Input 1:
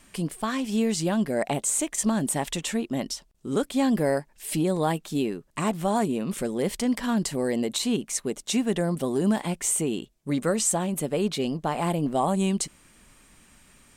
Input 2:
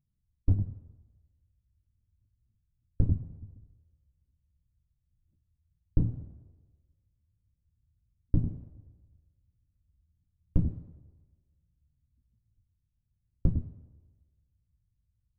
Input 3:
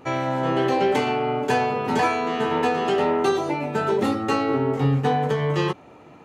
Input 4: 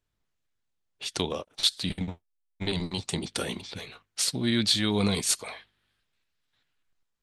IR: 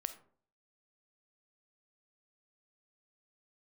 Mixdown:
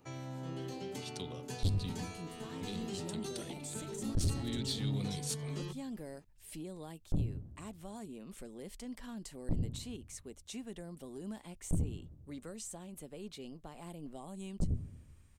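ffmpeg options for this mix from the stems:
-filter_complex "[0:a]asubboost=boost=5:cutoff=54,deesser=0.4,adelay=2000,volume=-17.5dB[link_01];[1:a]bandreject=frequency=60:width_type=h:width=6,bandreject=frequency=120:width_type=h:width=6,adelay=1150,volume=0.5dB[link_02];[2:a]bass=frequency=250:gain=8,treble=frequency=4000:gain=12,bandreject=frequency=50:width_type=h:width=6,bandreject=frequency=100:width_type=h:width=6,bandreject=frequency=150:width_type=h:width=6,bandreject=frequency=200:width_type=h:width=6,bandreject=frequency=250:width_type=h:width=6,volume=-19.5dB[link_03];[3:a]volume=-12dB[link_04];[link_01][link_02][link_03][link_04]amix=inputs=4:normalize=0,acrossover=split=360|3000[link_05][link_06][link_07];[link_06]acompressor=threshold=-53dB:ratio=2.5[link_08];[link_05][link_08][link_07]amix=inputs=3:normalize=0,asoftclip=type=tanh:threshold=-26dB"

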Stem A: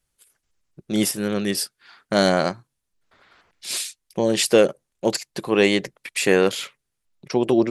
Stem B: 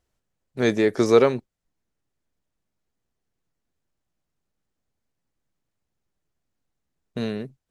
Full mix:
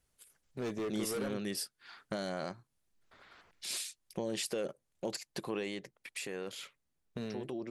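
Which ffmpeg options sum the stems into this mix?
ffmpeg -i stem1.wav -i stem2.wav -filter_complex "[0:a]alimiter=limit=-11.5dB:level=0:latency=1:release=22,volume=-3.5dB,afade=type=out:start_time=5.59:duration=0.22:silence=0.375837[link_01];[1:a]asoftclip=type=hard:threshold=-19dB,volume=-5.5dB[link_02];[link_01][link_02]amix=inputs=2:normalize=0,acompressor=threshold=-42dB:ratio=2" out.wav

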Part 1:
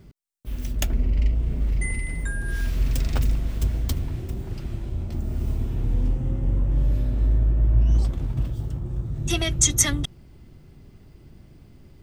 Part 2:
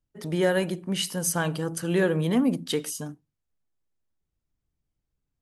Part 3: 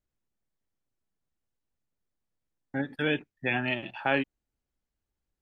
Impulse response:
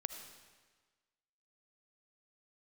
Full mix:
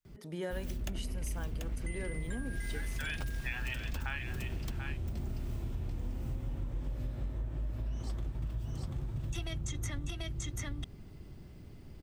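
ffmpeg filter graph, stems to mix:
-filter_complex "[0:a]acrossover=split=110|690|3000[link_01][link_02][link_03][link_04];[link_01]acompressor=threshold=-28dB:ratio=4[link_05];[link_02]acompressor=threshold=-37dB:ratio=4[link_06];[link_03]acompressor=threshold=-39dB:ratio=4[link_07];[link_04]acompressor=threshold=-41dB:ratio=4[link_08];[link_05][link_06][link_07][link_08]amix=inputs=4:normalize=0,adelay=50,volume=-3.5dB,asplit=2[link_09][link_10];[link_10]volume=-3dB[link_11];[1:a]volume=-13dB[link_12];[2:a]highpass=frequency=1000:width=0.5412,highpass=frequency=1000:width=1.3066,volume=-1.5dB,asplit=2[link_13][link_14];[link_14]volume=-10.5dB[link_15];[link_11][link_15]amix=inputs=2:normalize=0,aecho=0:1:738:1[link_16];[link_09][link_12][link_13][link_16]amix=inputs=4:normalize=0,acompressor=threshold=-33dB:ratio=6"

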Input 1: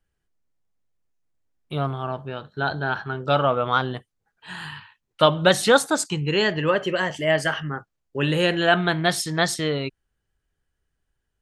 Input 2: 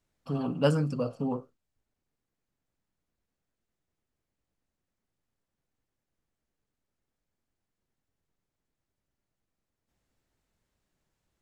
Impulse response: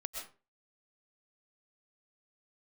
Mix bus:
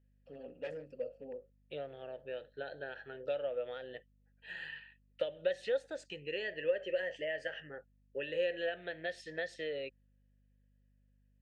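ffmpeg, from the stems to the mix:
-filter_complex "[0:a]lowpass=7200,highshelf=frequency=4700:gain=9,acompressor=threshold=-25dB:ratio=6,volume=0.5dB[link_01];[1:a]aeval=exprs='0.0794*(abs(mod(val(0)/0.0794+3,4)-2)-1)':channel_layout=same,volume=-3dB[link_02];[link_01][link_02]amix=inputs=2:normalize=0,asplit=3[link_03][link_04][link_05];[link_03]bandpass=frequency=530:width_type=q:width=8,volume=0dB[link_06];[link_04]bandpass=frequency=1840:width_type=q:width=8,volume=-6dB[link_07];[link_05]bandpass=frequency=2480:width_type=q:width=8,volume=-9dB[link_08];[link_06][link_07][link_08]amix=inputs=3:normalize=0,aeval=exprs='val(0)+0.000355*(sin(2*PI*50*n/s)+sin(2*PI*2*50*n/s)/2+sin(2*PI*3*50*n/s)/3+sin(2*PI*4*50*n/s)/4+sin(2*PI*5*50*n/s)/5)':channel_layout=same"

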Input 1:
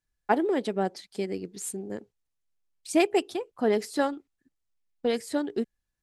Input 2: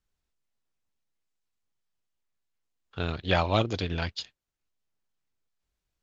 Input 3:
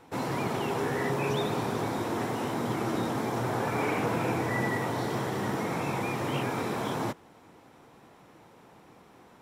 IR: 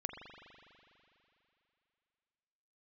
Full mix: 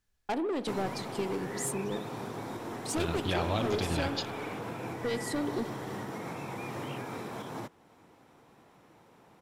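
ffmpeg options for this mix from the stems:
-filter_complex "[0:a]asoftclip=type=tanh:threshold=-26.5dB,volume=0dB,asplit=2[link_01][link_02];[link_02]volume=-9.5dB[link_03];[1:a]alimiter=limit=-17dB:level=0:latency=1,volume=-2.5dB,asplit=2[link_04][link_05];[link_05]volume=-3dB[link_06];[2:a]alimiter=level_in=0.5dB:limit=-24dB:level=0:latency=1:release=328,volume=-0.5dB,adelay=550,volume=-4.5dB[link_07];[link_01][link_04]amix=inputs=2:normalize=0,acompressor=threshold=-33dB:ratio=6,volume=0dB[link_08];[3:a]atrim=start_sample=2205[link_09];[link_03][link_06]amix=inputs=2:normalize=0[link_10];[link_10][link_09]afir=irnorm=-1:irlink=0[link_11];[link_07][link_08][link_11]amix=inputs=3:normalize=0"

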